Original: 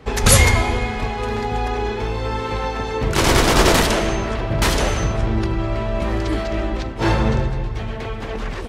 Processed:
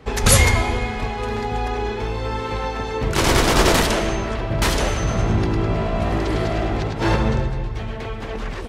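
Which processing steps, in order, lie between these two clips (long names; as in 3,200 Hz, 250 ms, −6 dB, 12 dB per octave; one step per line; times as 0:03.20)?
0:04.97–0:07.16: echo with shifted repeats 104 ms, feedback 47%, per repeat +53 Hz, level −3.5 dB
level −1.5 dB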